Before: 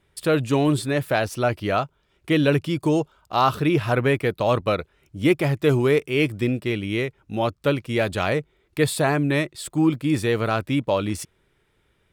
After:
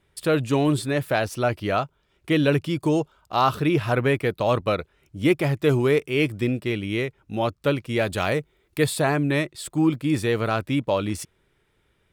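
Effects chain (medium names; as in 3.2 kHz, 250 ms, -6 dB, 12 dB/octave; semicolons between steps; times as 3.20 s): 8.08–8.86 s: treble shelf 8.4 kHz +8 dB; trim -1 dB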